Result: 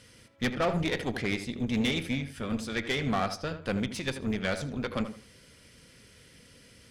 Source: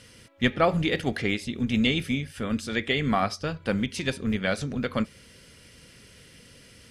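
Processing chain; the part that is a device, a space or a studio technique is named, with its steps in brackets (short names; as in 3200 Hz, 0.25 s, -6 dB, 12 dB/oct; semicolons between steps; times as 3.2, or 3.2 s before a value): notch 2800 Hz, Q 25; rockabilly slapback (tube stage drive 22 dB, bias 0.7; tape echo 80 ms, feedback 30%, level -8 dB, low-pass 1900 Hz)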